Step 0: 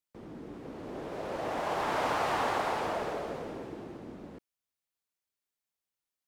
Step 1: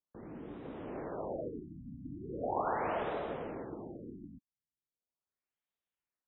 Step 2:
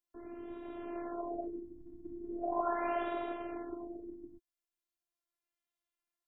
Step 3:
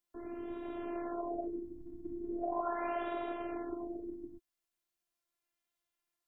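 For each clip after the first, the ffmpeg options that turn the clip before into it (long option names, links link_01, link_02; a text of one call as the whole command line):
ffmpeg -i in.wav -af "afftfilt=real='re*lt(b*sr/1024,280*pow(4000/280,0.5+0.5*sin(2*PI*0.39*pts/sr)))':imag='im*lt(b*sr/1024,280*pow(4000/280,0.5+0.5*sin(2*PI*0.39*pts/sr)))':win_size=1024:overlap=0.75,volume=-1.5dB" out.wav
ffmpeg -i in.wav -af "afftfilt=real='hypot(re,im)*cos(PI*b)':imag='0':win_size=512:overlap=0.75,volume=3.5dB" out.wav
ffmpeg -i in.wav -af "acompressor=threshold=-39dB:ratio=2,volume=3.5dB" out.wav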